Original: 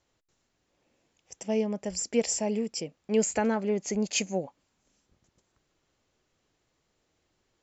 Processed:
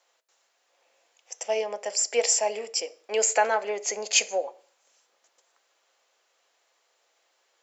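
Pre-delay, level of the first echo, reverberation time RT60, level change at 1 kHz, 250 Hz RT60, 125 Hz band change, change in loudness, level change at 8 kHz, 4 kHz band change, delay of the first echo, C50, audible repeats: 3 ms, no echo, 0.45 s, +8.5 dB, 0.50 s, under -20 dB, +3.5 dB, no reading, +7.5 dB, no echo, 20.5 dB, no echo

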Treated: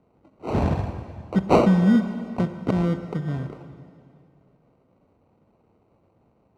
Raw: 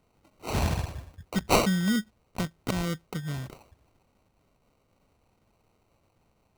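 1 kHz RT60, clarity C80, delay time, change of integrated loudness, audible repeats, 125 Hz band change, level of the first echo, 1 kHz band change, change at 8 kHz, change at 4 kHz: 2.4 s, 10.5 dB, no echo, +6.5 dB, no echo, +7.0 dB, no echo, +4.0 dB, under -10 dB, -7.5 dB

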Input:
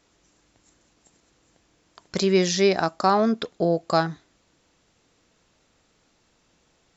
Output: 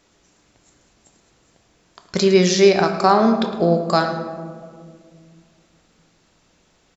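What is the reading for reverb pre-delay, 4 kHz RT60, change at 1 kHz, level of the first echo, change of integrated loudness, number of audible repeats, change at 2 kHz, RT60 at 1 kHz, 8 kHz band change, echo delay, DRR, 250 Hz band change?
5 ms, 0.95 s, +5.0 dB, -14.5 dB, +5.5 dB, 1, +5.0 dB, 1.7 s, no reading, 109 ms, 5.5 dB, +6.0 dB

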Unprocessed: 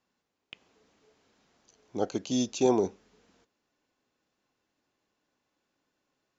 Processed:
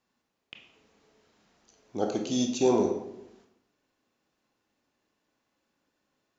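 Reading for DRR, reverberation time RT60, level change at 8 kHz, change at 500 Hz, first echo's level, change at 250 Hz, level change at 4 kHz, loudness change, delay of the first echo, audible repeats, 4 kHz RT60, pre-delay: 2.5 dB, 0.85 s, no reading, +1.5 dB, no echo, +1.5 dB, +1.5 dB, +1.5 dB, no echo, no echo, 0.55 s, 22 ms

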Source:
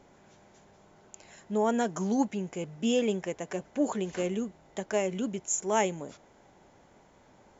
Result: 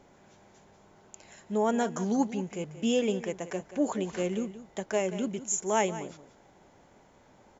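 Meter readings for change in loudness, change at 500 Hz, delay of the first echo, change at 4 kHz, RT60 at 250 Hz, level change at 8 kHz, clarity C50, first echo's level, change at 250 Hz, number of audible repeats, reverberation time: 0.0 dB, 0.0 dB, 181 ms, 0.0 dB, no reverb, no reading, no reverb, -14.0 dB, 0.0 dB, 1, no reverb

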